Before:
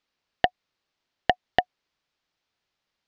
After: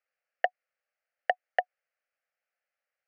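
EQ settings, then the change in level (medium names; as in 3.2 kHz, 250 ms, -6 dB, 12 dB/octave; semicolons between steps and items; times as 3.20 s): elliptic high-pass 500 Hz; low-pass 4.1 kHz; static phaser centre 990 Hz, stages 6; -2.0 dB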